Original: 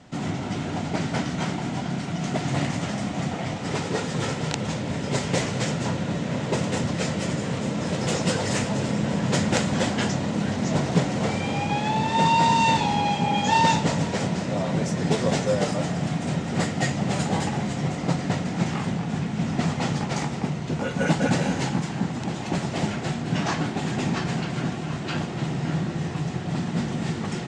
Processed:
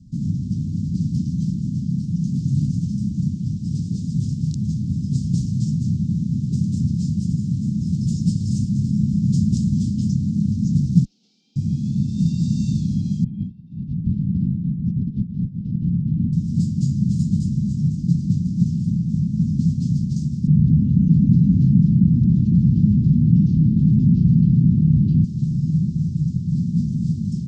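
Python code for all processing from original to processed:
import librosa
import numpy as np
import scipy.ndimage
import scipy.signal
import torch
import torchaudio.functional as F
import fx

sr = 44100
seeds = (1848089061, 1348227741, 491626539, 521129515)

y = fx.chain(x, sr, fx.highpass(hz=700.0, slope=24),
    fx.air_absorb(metres=290.0), at=(11.05, 11.56))
y = fx.chain(y, sr, fx.lowpass(hz=2600.0, slope=24),
    fx.echo_single(ms=181, db=-9.0),
    fx.over_compress(threshold_db=-27.0, ratio=-0.5), at=(13.24, 16.33))
y = fx.chain(y, sr, fx.lowpass(hz=1900.0, slope=12),
    fx.env_flatten(amount_pct=70), at=(20.47, 25.24))
y = scipy.signal.sosfilt(scipy.signal.ellip(3, 1.0, 50, [210.0, 5000.0], 'bandstop', fs=sr, output='sos'), y)
y = fx.tilt_eq(y, sr, slope=-3.0)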